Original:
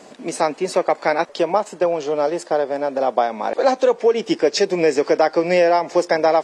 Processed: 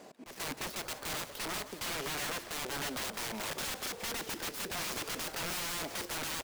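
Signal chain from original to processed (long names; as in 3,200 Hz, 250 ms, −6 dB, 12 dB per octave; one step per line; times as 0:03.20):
gap after every zero crossing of 0.073 ms
brickwall limiter −9.5 dBFS, peak gain reduction 5.5 dB
wrap-around overflow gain 23 dB
on a send: echo with shifted repeats 172 ms, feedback 61%, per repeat −60 Hz, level −14 dB
on the sum: volume swells 159 ms
level −9 dB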